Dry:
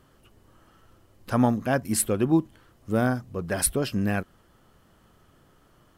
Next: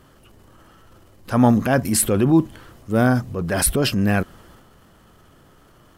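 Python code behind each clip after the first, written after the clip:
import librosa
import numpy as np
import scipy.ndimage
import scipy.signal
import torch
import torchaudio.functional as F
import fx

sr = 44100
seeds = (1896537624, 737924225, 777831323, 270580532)

y = fx.transient(x, sr, attack_db=-4, sustain_db=6)
y = F.gain(torch.from_numpy(y), 7.0).numpy()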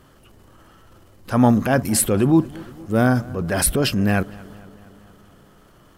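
y = fx.echo_filtered(x, sr, ms=230, feedback_pct=66, hz=2800.0, wet_db=-21.5)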